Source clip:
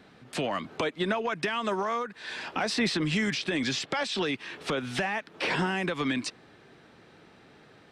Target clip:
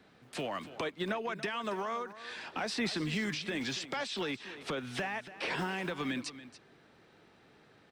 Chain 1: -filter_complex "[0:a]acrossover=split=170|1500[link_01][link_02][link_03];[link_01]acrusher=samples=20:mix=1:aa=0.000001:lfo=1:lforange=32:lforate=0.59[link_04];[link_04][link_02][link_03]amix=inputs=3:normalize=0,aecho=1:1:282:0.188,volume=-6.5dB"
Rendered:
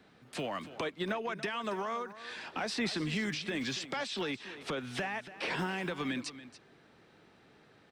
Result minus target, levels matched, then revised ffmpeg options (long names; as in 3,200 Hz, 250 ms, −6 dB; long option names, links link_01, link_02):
sample-and-hold swept by an LFO: distortion −8 dB
-filter_complex "[0:a]acrossover=split=170|1500[link_01][link_02][link_03];[link_01]acrusher=samples=46:mix=1:aa=0.000001:lfo=1:lforange=73.6:lforate=0.59[link_04];[link_04][link_02][link_03]amix=inputs=3:normalize=0,aecho=1:1:282:0.188,volume=-6.5dB"